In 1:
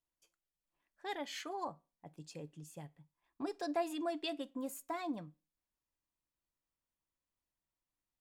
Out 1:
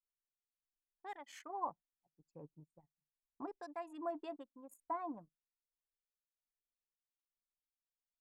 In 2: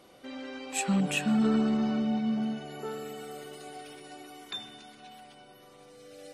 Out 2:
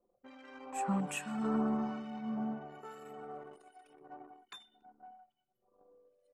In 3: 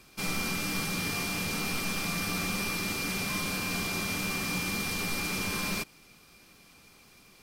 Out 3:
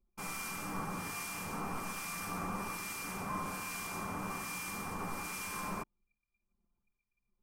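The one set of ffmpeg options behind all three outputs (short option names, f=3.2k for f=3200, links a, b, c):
-filter_complex "[0:a]acrossover=split=1600[a][b];[a]aeval=exprs='val(0)*(1-0.7/2+0.7/2*cos(2*PI*1.2*n/s))':c=same[c];[b]aeval=exprs='val(0)*(1-0.7/2-0.7/2*cos(2*PI*1.2*n/s))':c=same[d];[c][d]amix=inputs=2:normalize=0,anlmdn=0.0158,equalizer=f=1k:t=o:w=1:g=11,equalizer=f=4k:t=o:w=1:g=-10,equalizer=f=8k:t=o:w=1:g=4,volume=-6dB"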